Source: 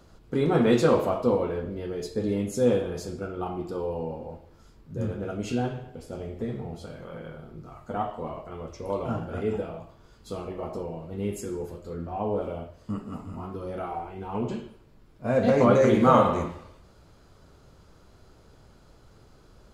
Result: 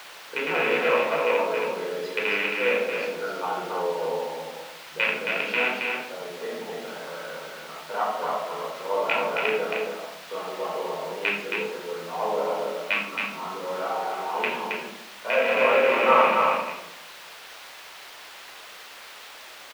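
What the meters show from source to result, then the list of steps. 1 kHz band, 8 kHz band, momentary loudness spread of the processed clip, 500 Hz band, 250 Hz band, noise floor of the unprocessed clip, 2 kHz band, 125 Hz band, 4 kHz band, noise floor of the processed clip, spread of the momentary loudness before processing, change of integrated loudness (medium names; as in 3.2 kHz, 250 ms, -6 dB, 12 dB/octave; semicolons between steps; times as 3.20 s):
+5.0 dB, +2.0 dB, 20 LU, +1.0 dB, -10.5 dB, -55 dBFS, +15.0 dB, -17.0 dB, +11.5 dB, -44 dBFS, 19 LU, +1.5 dB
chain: rattle on loud lows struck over -26 dBFS, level -12 dBFS; low-pass that closes with the level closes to 2.4 kHz, closed at -21.5 dBFS; steep high-pass 160 Hz 96 dB/octave; level-controlled noise filter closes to 2.7 kHz, open at -19.5 dBFS; gain riding within 3 dB 0.5 s; peaking EQ 320 Hz -5.5 dB 1.9 oct; delay 271 ms -4 dB; simulated room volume 980 m³, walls furnished, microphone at 4.8 m; word length cut 6-bit, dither triangular; three-band isolator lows -18 dB, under 440 Hz, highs -17 dB, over 4.3 kHz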